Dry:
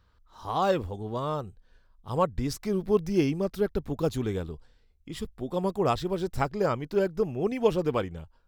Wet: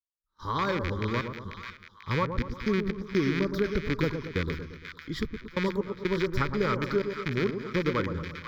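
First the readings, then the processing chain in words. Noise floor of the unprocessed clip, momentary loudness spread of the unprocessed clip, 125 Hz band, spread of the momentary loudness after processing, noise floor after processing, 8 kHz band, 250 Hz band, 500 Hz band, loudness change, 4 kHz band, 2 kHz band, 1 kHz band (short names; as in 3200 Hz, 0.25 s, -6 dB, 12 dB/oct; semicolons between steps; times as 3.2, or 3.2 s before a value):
-63 dBFS, 12 LU, +1.5 dB, 11 LU, -58 dBFS, -6.0 dB, 0.0 dB, -3.0 dB, -1.0 dB, +3.0 dB, +8.5 dB, -2.5 dB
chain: rattling part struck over -34 dBFS, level -20 dBFS; gate -47 dBFS, range -30 dB; step gate ".xxxx.x.xx.x" 62 bpm -24 dB; high shelf 6500 Hz -11.5 dB; compressor, threshold -26 dBFS, peak gain reduction 8 dB; low shelf 390 Hz -4.5 dB; fixed phaser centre 2700 Hz, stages 6; on a send: split-band echo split 1200 Hz, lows 0.115 s, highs 0.491 s, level -7 dB; on the sum: gain +9 dB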